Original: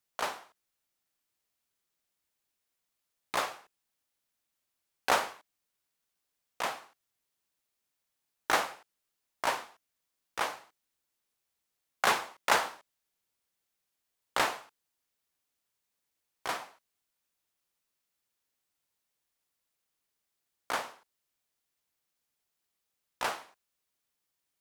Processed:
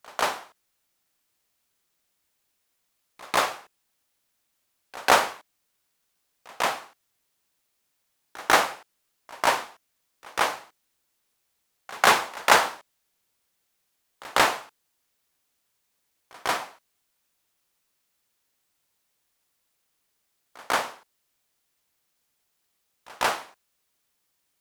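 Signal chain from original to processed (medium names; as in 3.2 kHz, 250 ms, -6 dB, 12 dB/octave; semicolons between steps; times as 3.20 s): reverse echo 146 ms -22.5 dB; trim +8.5 dB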